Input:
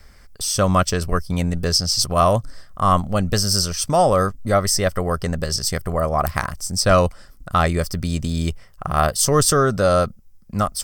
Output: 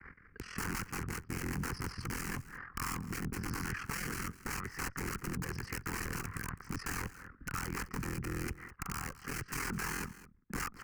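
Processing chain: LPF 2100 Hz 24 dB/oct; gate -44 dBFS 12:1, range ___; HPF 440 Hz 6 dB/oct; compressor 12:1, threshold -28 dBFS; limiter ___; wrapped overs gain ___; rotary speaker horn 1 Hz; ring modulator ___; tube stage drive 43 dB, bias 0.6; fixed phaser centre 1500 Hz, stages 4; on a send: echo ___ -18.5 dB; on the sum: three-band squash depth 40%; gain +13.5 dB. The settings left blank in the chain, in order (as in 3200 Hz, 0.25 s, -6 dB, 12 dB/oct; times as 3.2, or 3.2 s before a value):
-20 dB, -22 dBFS, 32 dB, 21 Hz, 0.207 s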